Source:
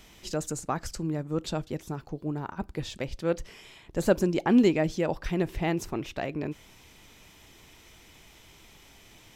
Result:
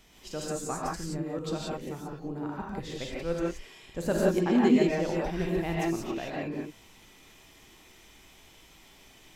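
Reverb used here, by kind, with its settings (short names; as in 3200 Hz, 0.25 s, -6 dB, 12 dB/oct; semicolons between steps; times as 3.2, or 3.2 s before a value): non-linear reverb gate 0.2 s rising, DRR -4.5 dB; gain -6.5 dB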